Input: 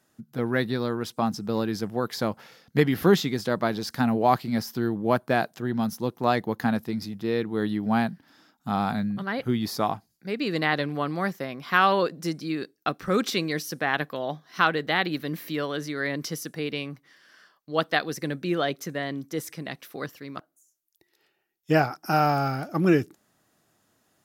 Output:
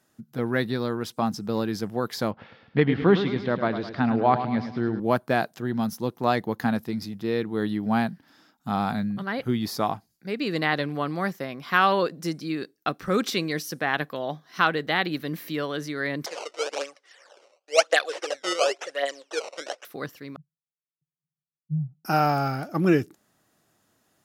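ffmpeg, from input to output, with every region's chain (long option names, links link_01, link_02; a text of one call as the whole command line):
ffmpeg -i in.wav -filter_complex "[0:a]asettb=1/sr,asplit=3[link_01][link_02][link_03];[link_01]atrim=end=2.314[link_04];[link_02]atrim=start=2.31:end=5,asetpts=PTS-STARTPTS,afade=type=in:duration=0.004:curve=qsin,afade=type=out:start_time=2.686:duration=0.004:curve=qsin,lowpass=frequency=3500:width=0.5412,lowpass=frequency=3500:width=1.3066,aecho=1:1:105|210|315|420|525:0.316|0.152|0.0729|0.035|0.0168,atrim=end_sample=118629[link_05];[link_03]atrim=start=4.996[link_06];[link_04][link_05]acrossfade=duration=0.004:curve1=hsin:curve2=qsin[link_07];[link_07][link_06]acrossfade=duration=0.004:curve1=qsin:curve2=hsin,asettb=1/sr,asplit=3[link_08][link_09][link_10];[link_08]atrim=end=16.264[link_11];[link_09]atrim=start=16.26:end=19.85,asetpts=PTS-STARTPTS,afade=type=in:duration=0.004:curve=qsin,afade=type=out:start_time=3.586:duration=0.004:curve=qsin,aphaser=in_gain=1:out_gain=1:delay=3:decay=0.64:speed=1.8:type=triangular,acrusher=samples=15:mix=1:aa=0.000001:lfo=1:lforange=24:lforate=1,highpass=frequency=460:width=0.5412,highpass=frequency=460:width=1.3066,equalizer=frequency=550:width_type=q:width=4:gain=8,equalizer=frequency=1000:width_type=q:width=4:gain=-3,equalizer=frequency=2900:width_type=q:width=4:gain=4,equalizer=frequency=5500:width_type=q:width=4:gain=8,lowpass=frequency=8500:width=0.5412,lowpass=frequency=8500:width=1.3066[link_12];[link_10]atrim=start=19.846[link_13];[link_11][link_12]acrossfade=duration=0.004:curve1=hsin:curve2=qsin[link_14];[link_14][link_13]acrossfade=duration=0.004:curve1=qsin:curve2=hsin,asettb=1/sr,asplit=3[link_15][link_16][link_17];[link_15]atrim=end=20.364[link_18];[link_16]atrim=start=20.36:end=22.05,asetpts=PTS-STARTPTS,afade=type=in:duration=0.004:curve=qsin,afade=type=out:start_time=1.686:duration=0.004:curve=qsin,asuperpass=centerf=150:order=4:qfactor=4.2,aecho=1:1:1.4:0.37,atrim=end_sample=74529[link_19];[link_17]atrim=start=22.046[link_20];[link_18][link_19]acrossfade=duration=0.004:curve1=hsin:curve2=qsin[link_21];[link_21][link_20]acrossfade=duration=0.004:curve1=qsin:curve2=hsin" out.wav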